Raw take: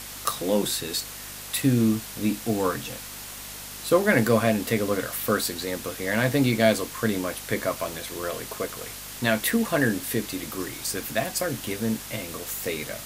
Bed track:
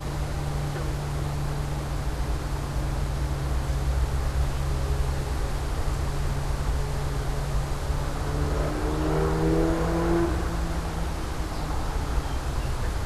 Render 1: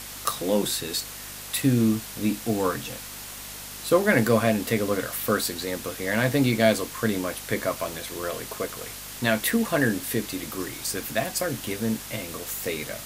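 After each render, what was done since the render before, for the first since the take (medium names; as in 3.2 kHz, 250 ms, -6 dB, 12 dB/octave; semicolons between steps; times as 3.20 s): no audible change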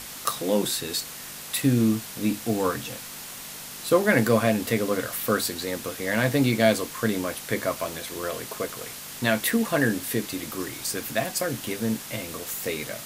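de-hum 50 Hz, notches 2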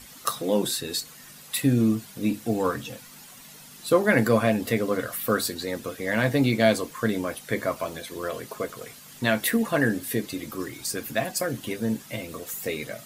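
noise reduction 11 dB, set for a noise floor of -39 dBFS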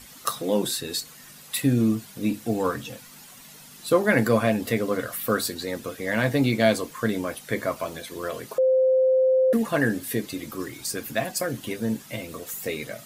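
8.58–9.53 s: bleep 520 Hz -16 dBFS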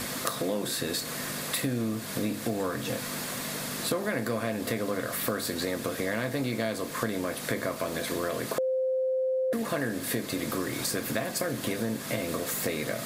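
spectral levelling over time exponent 0.6; compression 6:1, threshold -27 dBFS, peak gain reduction 14.5 dB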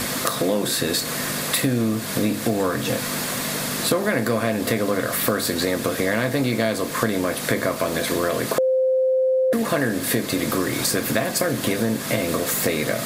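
trim +8.5 dB; peak limiter -1 dBFS, peak gain reduction 2 dB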